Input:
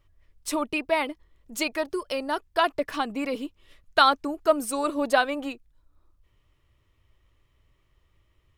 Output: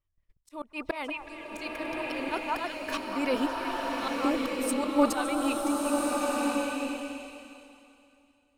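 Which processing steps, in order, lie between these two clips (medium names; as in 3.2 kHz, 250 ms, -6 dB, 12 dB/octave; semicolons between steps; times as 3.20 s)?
gate -53 dBFS, range -24 dB; slow attack 420 ms; repeats whose band climbs or falls 187 ms, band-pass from 980 Hz, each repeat 1.4 oct, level -5 dB; slow attack 155 ms; swelling reverb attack 1320 ms, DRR -2 dB; trim +4 dB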